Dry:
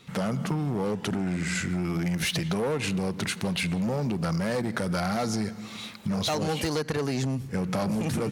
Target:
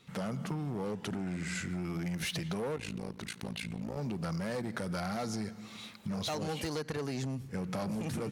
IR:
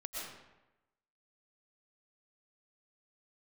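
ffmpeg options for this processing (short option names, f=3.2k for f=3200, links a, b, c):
-filter_complex "[0:a]asettb=1/sr,asplit=3[a][b][c];[a]atrim=end=2.764[d];[b]atrim=start=2.76:end=3.97,asetpts=PTS-STARTPTS,afade=t=in:d=0.004:c=qsin,afade=t=out:st=1.206:d=0.004:c=qsin,tremolo=f=55:d=0.919[e];[c]atrim=start=3.966[f];[d][e]acrossfade=d=0.004:c1=hsin:c2=qsin[g];[g][f]acrossfade=d=0.004:c1=qsin:c2=hsin,volume=-8dB"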